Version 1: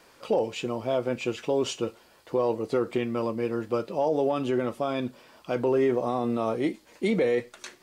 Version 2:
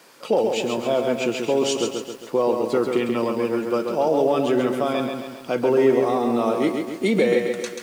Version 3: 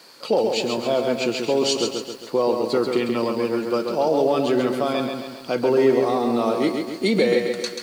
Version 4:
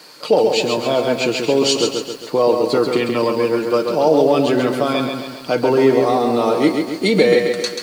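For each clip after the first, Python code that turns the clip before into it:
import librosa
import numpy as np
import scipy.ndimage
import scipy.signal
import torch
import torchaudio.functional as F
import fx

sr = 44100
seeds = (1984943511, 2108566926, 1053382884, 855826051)

y1 = scipy.signal.sosfilt(scipy.signal.butter(4, 140.0, 'highpass', fs=sr, output='sos'), x)
y1 = fx.high_shelf(y1, sr, hz=4700.0, db=5.0)
y1 = fx.echo_crushed(y1, sr, ms=135, feedback_pct=55, bits=9, wet_db=-5.0)
y1 = y1 * librosa.db_to_amplitude(4.5)
y2 = fx.peak_eq(y1, sr, hz=4400.0, db=14.0, octaves=0.25)
y3 = y2 + 0.37 * np.pad(y2, (int(6.6 * sr / 1000.0), 0))[:len(y2)]
y3 = y3 * librosa.db_to_amplitude(5.0)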